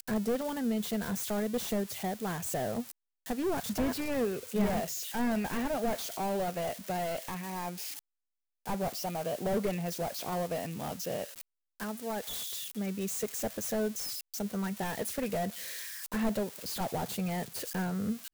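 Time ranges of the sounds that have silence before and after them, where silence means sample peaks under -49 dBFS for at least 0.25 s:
3.26–7.99
8.66–11.41

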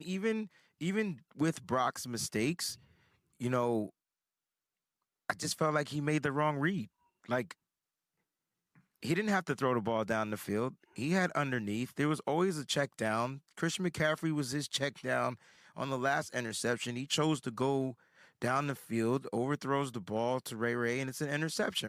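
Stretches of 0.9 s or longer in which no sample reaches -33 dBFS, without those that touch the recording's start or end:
3.85–5.3
7.51–9.05

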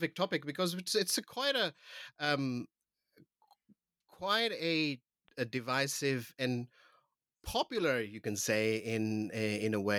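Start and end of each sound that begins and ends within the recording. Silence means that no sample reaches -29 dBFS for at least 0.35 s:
2.22–2.58
4.24–4.92
5.39–6.59

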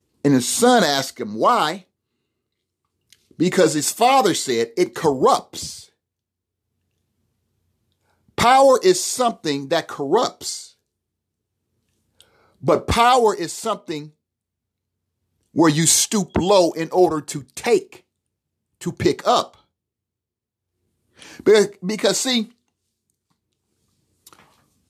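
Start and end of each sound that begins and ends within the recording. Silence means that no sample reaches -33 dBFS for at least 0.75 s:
3.13–5.83
8.38–10.65
12.21–14.06
15.56–17.96
18.81–19.54
21.22–22.45

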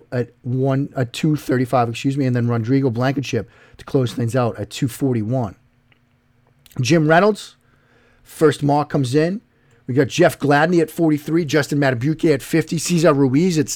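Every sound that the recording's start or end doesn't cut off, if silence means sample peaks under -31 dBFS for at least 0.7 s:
6.66–7.48

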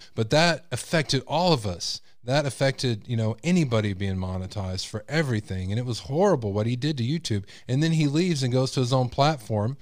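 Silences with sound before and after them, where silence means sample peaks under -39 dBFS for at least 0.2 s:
1.98–2.26

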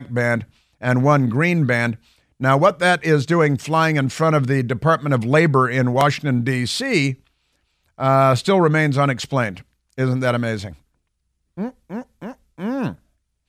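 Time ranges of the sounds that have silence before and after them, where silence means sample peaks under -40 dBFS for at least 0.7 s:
7.99–10.75

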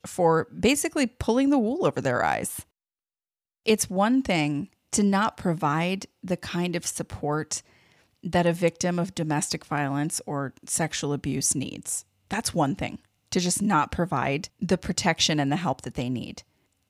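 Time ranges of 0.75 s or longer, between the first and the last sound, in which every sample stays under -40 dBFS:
2.62–3.66

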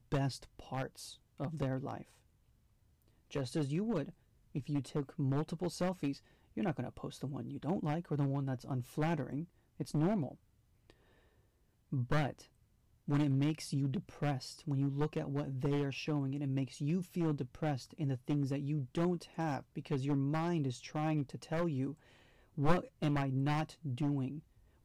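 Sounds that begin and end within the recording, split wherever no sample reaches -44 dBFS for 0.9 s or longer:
3.32–10.9

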